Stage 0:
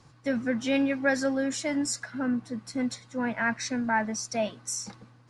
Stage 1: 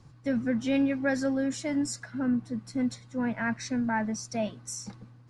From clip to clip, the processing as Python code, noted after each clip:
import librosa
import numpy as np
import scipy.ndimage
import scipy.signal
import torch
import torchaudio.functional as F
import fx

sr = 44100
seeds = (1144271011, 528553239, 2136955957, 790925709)

y = fx.low_shelf(x, sr, hz=280.0, db=11.0)
y = y * 10.0 ** (-5.0 / 20.0)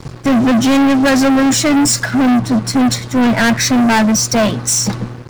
y = fx.leveller(x, sr, passes=5)
y = y * 10.0 ** (8.5 / 20.0)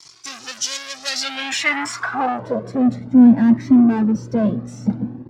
y = fx.filter_sweep_bandpass(x, sr, from_hz=5600.0, to_hz=260.0, start_s=1.03, end_s=2.98, q=2.4)
y = fx.comb_cascade(y, sr, direction='rising', hz=0.55)
y = y * 10.0 ** (8.5 / 20.0)